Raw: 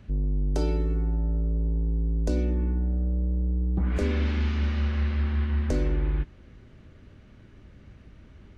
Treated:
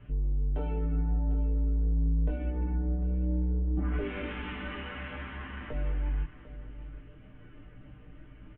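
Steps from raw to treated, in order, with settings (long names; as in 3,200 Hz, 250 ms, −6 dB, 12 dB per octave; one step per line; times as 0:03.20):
elliptic low-pass filter 3,100 Hz, stop band 40 dB
comb filter 6.7 ms, depth 96%
brickwall limiter −24 dBFS, peak gain reduction 10 dB
multi-voice chorus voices 6, 0.55 Hz, delay 17 ms, depth 2.3 ms
single-tap delay 748 ms −14.5 dB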